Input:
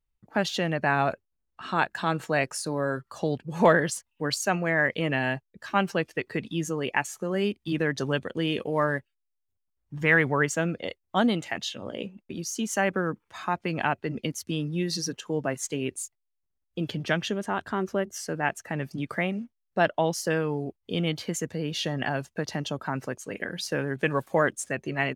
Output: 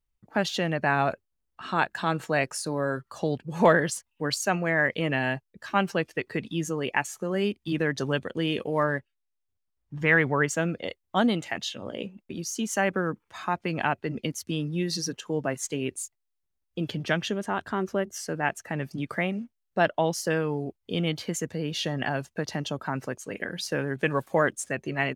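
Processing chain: 8.83–10.49 s: treble shelf 9.5 kHz -11.5 dB

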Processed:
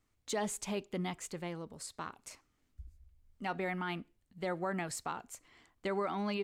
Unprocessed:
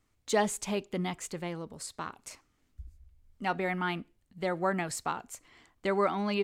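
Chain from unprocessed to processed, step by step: peak limiter -22 dBFS, peak gain reduction 6.5 dB; trim -4 dB

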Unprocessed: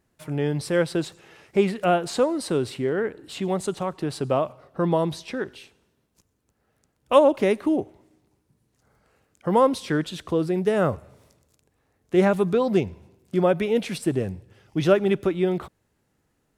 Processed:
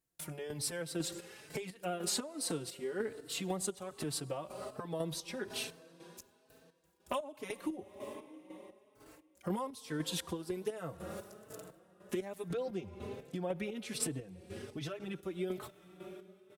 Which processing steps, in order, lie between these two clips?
gate with hold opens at -51 dBFS; reverberation RT60 3.6 s, pre-delay 58 ms, DRR 19.5 dB; square tremolo 2 Hz, depth 65%, duty 40%; treble shelf 7.8 kHz +9 dB, from 12.48 s -2 dB, from 15.15 s +10.5 dB; compression 10:1, threshold -37 dBFS, peak gain reduction 26 dB; treble shelf 3.5 kHz +7.5 dB; endless flanger 4 ms +1.2 Hz; trim +4.5 dB

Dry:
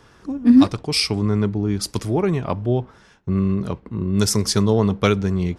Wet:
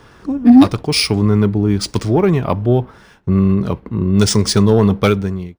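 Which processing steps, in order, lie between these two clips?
fade out at the end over 0.61 s; sine folder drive 3 dB, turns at -2 dBFS; decimation joined by straight lines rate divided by 3×

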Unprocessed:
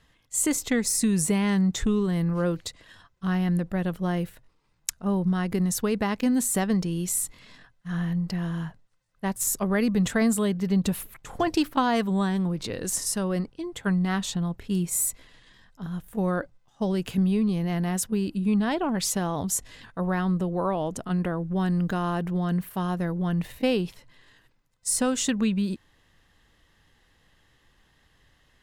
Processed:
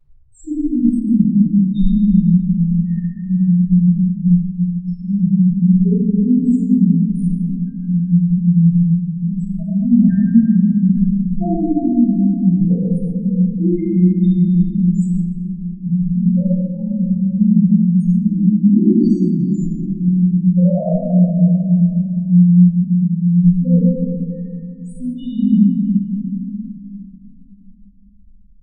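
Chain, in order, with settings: in parallel at -5.5 dB: sine folder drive 10 dB, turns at -3.5 dBFS; on the sum: peak limiter -12.5 dBFS, peak gain reduction 8 dB; low-pass 1.4 kHz 6 dB/octave; loudest bins only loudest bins 1; reverberation RT60 2.4 s, pre-delay 4 ms, DRR -15.5 dB; trim -6 dB

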